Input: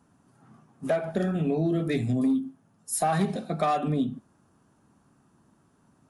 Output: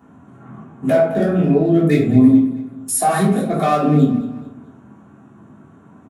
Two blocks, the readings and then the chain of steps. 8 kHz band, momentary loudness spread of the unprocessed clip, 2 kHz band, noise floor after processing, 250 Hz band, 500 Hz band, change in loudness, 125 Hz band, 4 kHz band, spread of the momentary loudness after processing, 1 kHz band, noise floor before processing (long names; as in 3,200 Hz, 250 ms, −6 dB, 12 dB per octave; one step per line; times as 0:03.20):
+10.5 dB, 7 LU, +9.5 dB, −47 dBFS, +13.0 dB, +11.5 dB, +11.5 dB, +11.0 dB, +6.5 dB, 11 LU, +8.5 dB, −65 dBFS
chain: adaptive Wiener filter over 9 samples
high-pass filter 87 Hz
high-shelf EQ 8,900 Hz +7.5 dB
in parallel at +1 dB: downward compressor, threshold −39 dBFS, peak gain reduction 17 dB
on the sum: brickwall limiter −18 dBFS, peak gain reduction 5.5 dB
on a send: repeating echo 216 ms, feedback 38%, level −15 dB
on the sum: rectangular room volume 320 cubic metres, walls furnished, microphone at 3.3 metres
level +4 dB